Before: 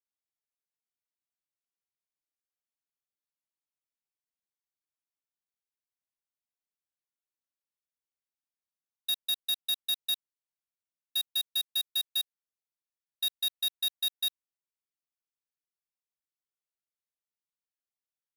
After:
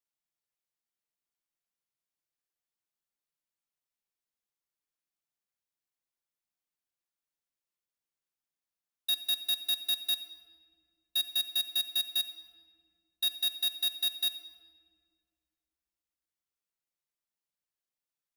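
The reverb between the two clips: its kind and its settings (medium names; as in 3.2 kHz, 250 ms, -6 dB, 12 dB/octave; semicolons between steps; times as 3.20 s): simulated room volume 3400 m³, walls mixed, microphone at 0.82 m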